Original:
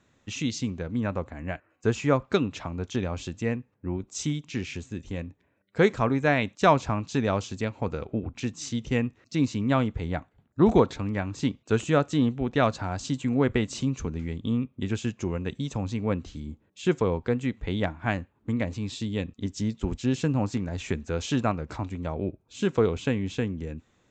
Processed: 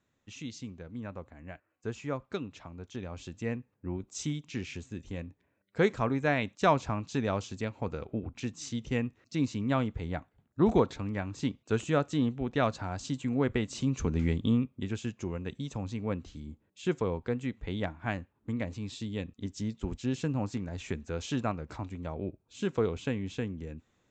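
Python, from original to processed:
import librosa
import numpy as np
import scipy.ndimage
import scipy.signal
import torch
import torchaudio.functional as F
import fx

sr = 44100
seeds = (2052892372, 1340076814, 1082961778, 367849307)

y = fx.gain(x, sr, db=fx.line((2.9, -12.0), (3.57, -5.0), (13.73, -5.0), (14.26, 5.0), (14.9, -6.0)))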